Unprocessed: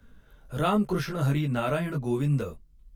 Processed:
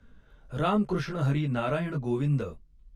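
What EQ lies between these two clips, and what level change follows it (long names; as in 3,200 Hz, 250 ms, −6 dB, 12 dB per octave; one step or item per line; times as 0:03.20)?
high-frequency loss of the air 63 metres
−1.0 dB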